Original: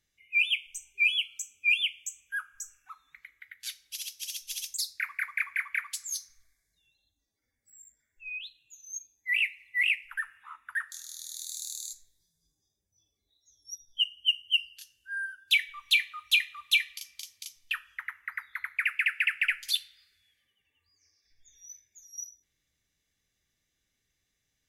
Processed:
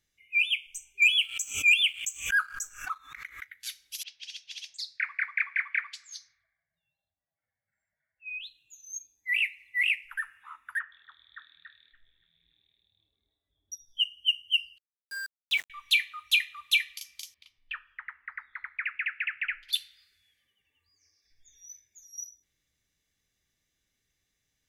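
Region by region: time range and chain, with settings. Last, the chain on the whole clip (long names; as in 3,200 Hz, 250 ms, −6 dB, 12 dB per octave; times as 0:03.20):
0:01.02–0:03.47: parametric band 1,300 Hz +8 dB 0.88 octaves + leveller curve on the samples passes 1 + background raised ahead of every attack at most 120 dB per second
0:04.03–0:08.30: high-pass filter 150 Hz + low-pass that shuts in the quiet parts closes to 1,300 Hz, open at −32 dBFS + drawn EQ curve 170 Hz 0 dB, 250 Hz −19 dB, 400 Hz −19 dB, 650 Hz +4 dB, 1,000 Hz −2 dB, 1,800 Hz +3 dB, 4,500 Hz −2 dB, 12,000 Hz −27 dB
0:10.79–0:13.72: Butterworth low-pass 3,400 Hz 96 dB per octave + echo through a band-pass that steps 286 ms, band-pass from 820 Hz, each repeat 0.7 octaves, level −3.5 dB
0:14.78–0:15.70: low-pass filter 7,400 Hz + high-shelf EQ 2,000 Hz −5.5 dB + centre clipping without the shift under −36.5 dBFS
0:17.34–0:19.73: frequency shifter −23 Hz + high-frequency loss of the air 420 metres
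whole clip: no processing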